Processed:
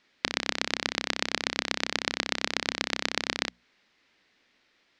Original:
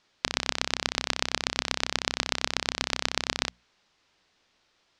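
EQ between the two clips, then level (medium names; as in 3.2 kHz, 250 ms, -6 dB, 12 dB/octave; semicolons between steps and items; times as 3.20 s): graphic EQ 250/500/2000 Hz +10/+4/+11 dB; dynamic bell 2.2 kHz, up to -4 dB, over -37 dBFS, Q 1.1; peaking EQ 4.1 kHz +3.5 dB 0.92 oct; -5.5 dB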